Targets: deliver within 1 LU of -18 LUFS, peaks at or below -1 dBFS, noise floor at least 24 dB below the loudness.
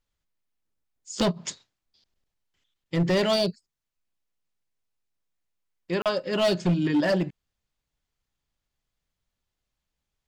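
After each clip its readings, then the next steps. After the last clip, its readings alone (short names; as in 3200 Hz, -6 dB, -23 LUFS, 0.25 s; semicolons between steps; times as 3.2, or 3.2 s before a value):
clipped 1.2%; flat tops at -18.0 dBFS; dropouts 1; longest dropout 37 ms; loudness -25.5 LUFS; peak -18.0 dBFS; loudness target -18.0 LUFS
-> clip repair -18 dBFS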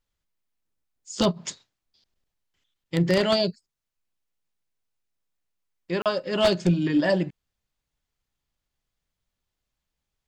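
clipped 0.0%; dropouts 1; longest dropout 37 ms
-> interpolate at 6.02, 37 ms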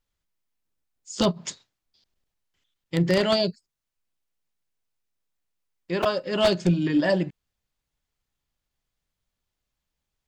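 dropouts 0; loudness -24.0 LUFS; peak -9.0 dBFS; loudness target -18.0 LUFS
-> gain +6 dB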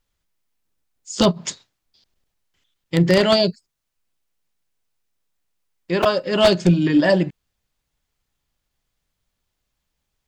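loudness -18.0 LUFS; peak -3.0 dBFS; noise floor -78 dBFS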